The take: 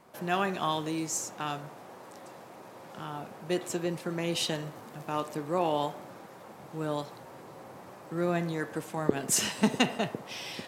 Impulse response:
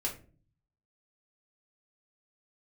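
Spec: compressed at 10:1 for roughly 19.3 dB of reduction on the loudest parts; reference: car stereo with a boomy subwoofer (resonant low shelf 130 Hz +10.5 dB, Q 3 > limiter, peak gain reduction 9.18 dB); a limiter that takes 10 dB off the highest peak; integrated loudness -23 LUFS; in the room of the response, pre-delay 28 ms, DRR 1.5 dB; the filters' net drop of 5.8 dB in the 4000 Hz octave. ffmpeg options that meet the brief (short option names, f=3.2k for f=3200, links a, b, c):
-filter_complex "[0:a]equalizer=f=4k:t=o:g=-8.5,acompressor=threshold=-39dB:ratio=10,alimiter=level_in=10.5dB:limit=-24dB:level=0:latency=1,volume=-10.5dB,asplit=2[a][b];[1:a]atrim=start_sample=2205,adelay=28[c];[b][c]afir=irnorm=-1:irlink=0,volume=-4.5dB[d];[a][d]amix=inputs=2:normalize=0,lowshelf=f=130:t=q:w=3:g=10.5,volume=25dB,alimiter=limit=-14dB:level=0:latency=1"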